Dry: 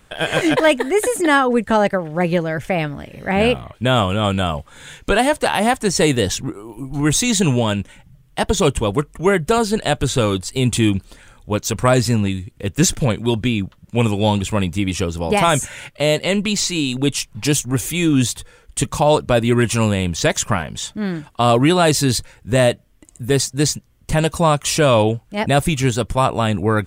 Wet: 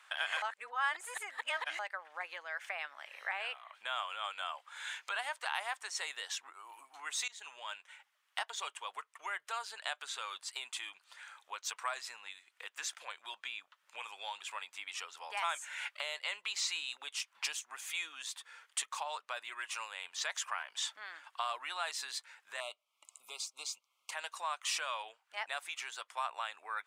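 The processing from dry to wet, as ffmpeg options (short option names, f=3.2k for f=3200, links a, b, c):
-filter_complex "[0:a]asettb=1/sr,asplit=3[a][b][c];[a]atrim=end=22.604[d];[b]atrim=start=22.6:end=24.11,asetpts=PTS-STARTPTS,afade=t=in:d=0.004:c=qsin,afade=t=out:st=1.506:d=0.004:c=qsin,asuperstop=centerf=1700:order=12:qfactor=2.2[e];[c]atrim=start=24.106[f];[d][e]acrossfade=d=0.004:c1=hsin:c2=qsin[g];[g][f]acrossfade=d=0.004:c1=qsin:c2=hsin,asplit=4[h][i][j][k];[h]atrim=end=0.422[l];[i]atrim=start=0.418:end=1.792,asetpts=PTS-STARTPTS,areverse[m];[j]atrim=start=1.788:end=7.28,asetpts=PTS-STARTPTS,afade=t=out:st=5.488:d=0.004:c=hsin:silence=0.0749894[n];[k]atrim=start=7.28,asetpts=PTS-STARTPTS,afade=t=in:d=1.12:silence=0.0749894[o];[l][m]acrossfade=d=0.004:c1=hsin:c2=hsin[p];[n][o]concat=n=2:v=0:a=1[q];[p][q]acrossfade=d=0.004:c1=hsin:c2=hsin,aemphasis=mode=reproduction:type=50kf,acompressor=threshold=-31dB:ratio=3,highpass=f=970:w=0.5412,highpass=f=970:w=1.3066,volume=-1dB"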